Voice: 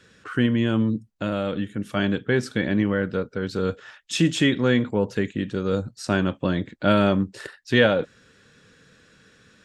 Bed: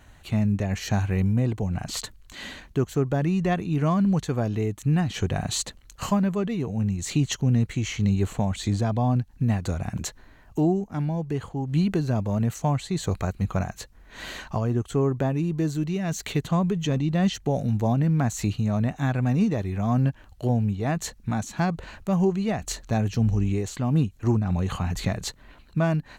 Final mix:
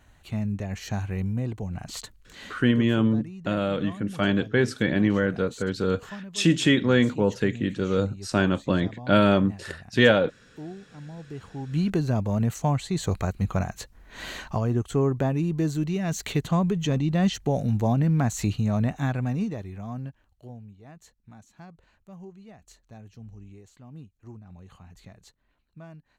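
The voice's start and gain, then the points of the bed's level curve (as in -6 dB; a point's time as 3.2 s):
2.25 s, 0.0 dB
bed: 2.46 s -5.5 dB
3.02 s -17 dB
10.92 s -17 dB
11.96 s 0 dB
18.94 s 0 dB
20.73 s -22 dB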